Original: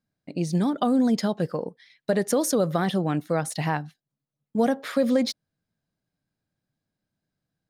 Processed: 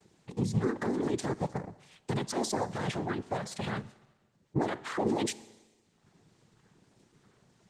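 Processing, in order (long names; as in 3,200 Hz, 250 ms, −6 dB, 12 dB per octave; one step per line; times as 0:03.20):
rippled gain that drifts along the octave scale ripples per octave 0.9, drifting −1.6 Hz, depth 14 dB
0:02.53–0:03.54: high-pass filter 260 Hz 6 dB per octave
dynamic equaliser 460 Hz, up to −5 dB, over −31 dBFS, Q 0.92
brickwall limiter −18 dBFS, peak gain reduction 8.5 dB
upward compression, threshold −37 dBFS
cochlear-implant simulation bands 6
pitch vibrato 0.6 Hz 29 cents
four-comb reverb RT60 1.3 s, combs from 28 ms, DRR 17.5 dB
level −4 dB
Opus 20 kbit/s 48,000 Hz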